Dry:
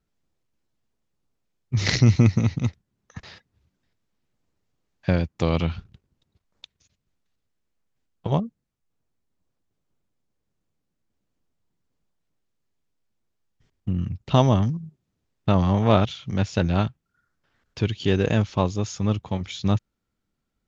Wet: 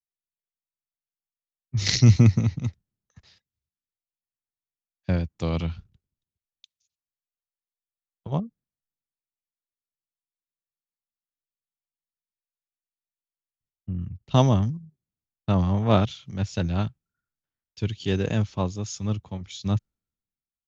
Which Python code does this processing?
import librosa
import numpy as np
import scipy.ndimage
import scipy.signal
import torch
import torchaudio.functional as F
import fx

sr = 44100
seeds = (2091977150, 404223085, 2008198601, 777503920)

y = fx.bass_treble(x, sr, bass_db=4, treble_db=5)
y = fx.band_widen(y, sr, depth_pct=70)
y = y * 10.0 ** (-6.5 / 20.0)